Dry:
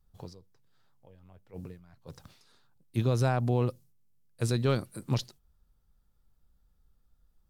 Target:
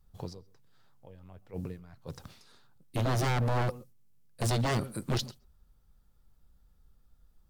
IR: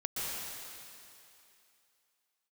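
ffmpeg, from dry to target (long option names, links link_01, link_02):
-filter_complex "[0:a]aeval=exprs='0.158*(cos(1*acos(clip(val(0)/0.158,-1,1)))-cos(1*PI/2))+0.0178*(cos(2*acos(clip(val(0)/0.158,-1,1)))-cos(2*PI/2))':channel_layout=same,asplit=2[link_01][link_02];[1:a]atrim=start_sample=2205,atrim=end_sample=6174,lowpass=frequency=2100:poles=1[link_03];[link_02][link_03]afir=irnorm=-1:irlink=0,volume=-15.5dB[link_04];[link_01][link_04]amix=inputs=2:normalize=0,aeval=exprs='0.0473*(abs(mod(val(0)/0.0473+3,4)-2)-1)':channel_layout=same,volume=3.5dB"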